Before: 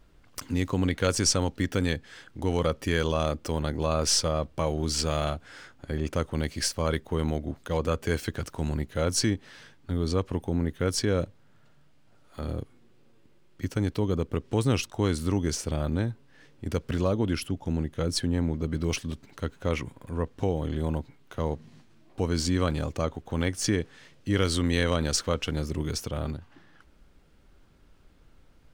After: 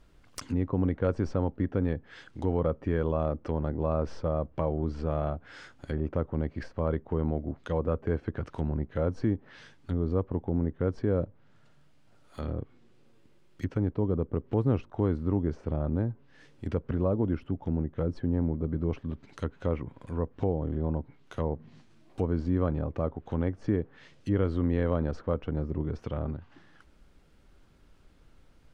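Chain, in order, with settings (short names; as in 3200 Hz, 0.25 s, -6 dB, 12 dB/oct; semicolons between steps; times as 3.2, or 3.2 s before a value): treble ducked by the level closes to 970 Hz, closed at -26 dBFS; gain -1 dB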